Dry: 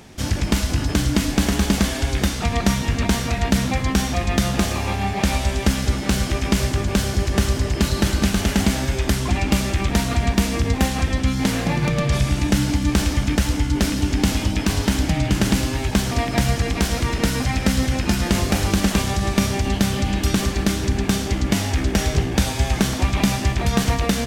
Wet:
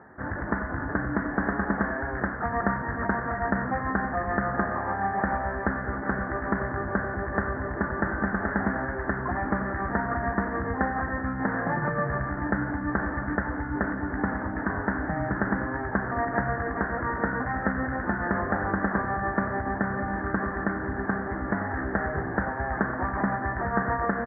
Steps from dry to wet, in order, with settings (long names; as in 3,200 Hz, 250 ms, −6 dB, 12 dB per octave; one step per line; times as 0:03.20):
Butterworth low-pass 1,800 Hz 96 dB per octave
spectral tilt +4 dB per octave
on a send: single-tap delay 93 ms −12.5 dB